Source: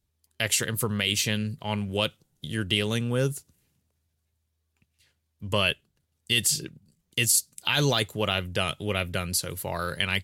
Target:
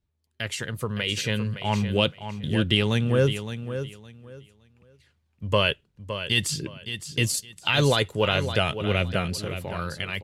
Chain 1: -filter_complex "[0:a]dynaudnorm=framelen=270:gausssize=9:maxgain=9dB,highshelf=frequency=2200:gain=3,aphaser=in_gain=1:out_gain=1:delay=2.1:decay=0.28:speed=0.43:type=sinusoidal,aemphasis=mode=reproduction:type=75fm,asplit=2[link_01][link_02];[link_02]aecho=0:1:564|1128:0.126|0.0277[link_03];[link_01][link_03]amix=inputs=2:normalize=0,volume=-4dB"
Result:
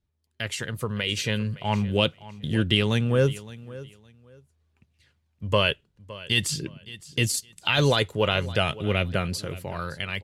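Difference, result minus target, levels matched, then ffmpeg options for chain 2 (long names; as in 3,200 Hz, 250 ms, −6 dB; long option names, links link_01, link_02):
echo-to-direct −8 dB
-filter_complex "[0:a]dynaudnorm=framelen=270:gausssize=9:maxgain=9dB,highshelf=frequency=2200:gain=3,aphaser=in_gain=1:out_gain=1:delay=2.1:decay=0.28:speed=0.43:type=sinusoidal,aemphasis=mode=reproduction:type=75fm,asplit=2[link_01][link_02];[link_02]aecho=0:1:564|1128|1692:0.316|0.0696|0.0153[link_03];[link_01][link_03]amix=inputs=2:normalize=0,volume=-4dB"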